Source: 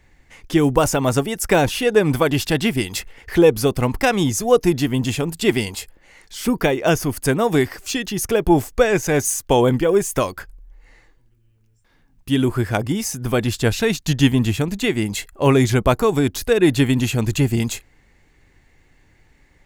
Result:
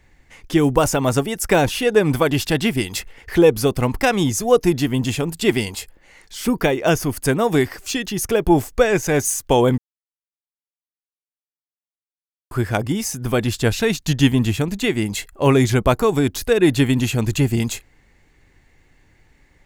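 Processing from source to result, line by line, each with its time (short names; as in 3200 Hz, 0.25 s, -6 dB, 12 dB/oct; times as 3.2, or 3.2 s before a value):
9.78–12.51 mute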